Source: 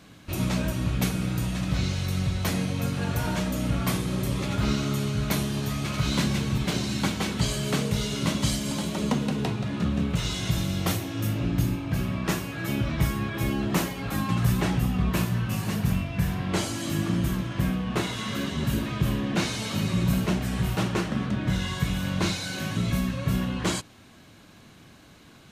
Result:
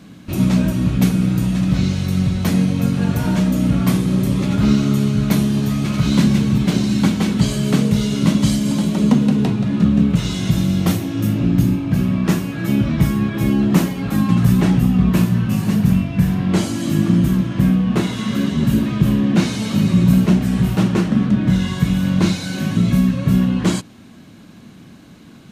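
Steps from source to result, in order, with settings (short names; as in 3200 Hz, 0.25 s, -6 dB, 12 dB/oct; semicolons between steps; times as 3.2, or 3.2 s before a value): bell 210 Hz +11 dB 1.4 oct; gain +3 dB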